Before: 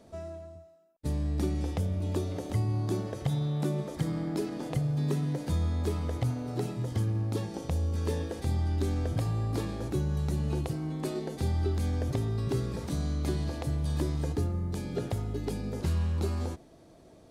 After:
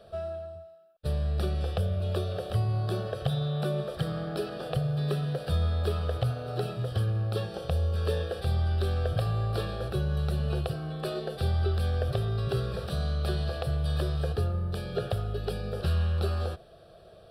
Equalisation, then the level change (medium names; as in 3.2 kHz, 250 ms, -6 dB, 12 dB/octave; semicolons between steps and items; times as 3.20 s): bass shelf 410 Hz -6 dB; treble shelf 8.1 kHz -9.5 dB; static phaser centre 1.4 kHz, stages 8; +9.0 dB